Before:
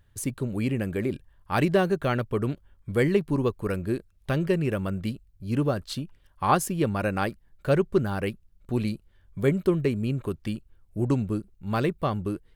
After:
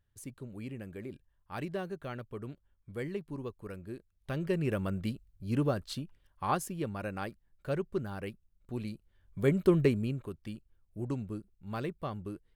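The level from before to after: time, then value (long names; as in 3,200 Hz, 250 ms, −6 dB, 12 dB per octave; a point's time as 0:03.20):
0:03.96 −15 dB
0:04.70 −4.5 dB
0:05.69 −4.5 dB
0:06.89 −11 dB
0:08.90 −11 dB
0:09.83 0 dB
0:10.28 −11 dB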